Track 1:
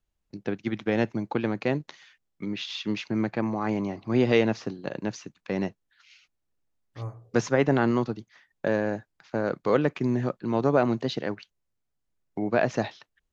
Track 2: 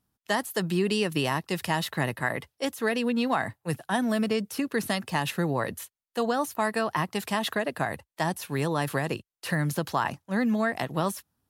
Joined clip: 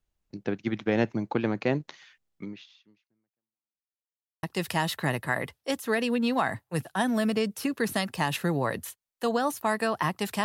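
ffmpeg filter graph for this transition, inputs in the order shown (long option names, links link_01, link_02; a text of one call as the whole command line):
ffmpeg -i cue0.wav -i cue1.wav -filter_complex "[0:a]apad=whole_dur=10.44,atrim=end=10.44,asplit=2[link_01][link_02];[link_01]atrim=end=3.93,asetpts=PTS-STARTPTS,afade=type=out:start_time=2.38:duration=1.55:curve=exp[link_03];[link_02]atrim=start=3.93:end=4.43,asetpts=PTS-STARTPTS,volume=0[link_04];[1:a]atrim=start=1.37:end=7.38,asetpts=PTS-STARTPTS,afade=type=in:duration=0.004:curve=hsin[link_05];[link_03][link_04][link_05]concat=n=3:v=0:a=1" out.wav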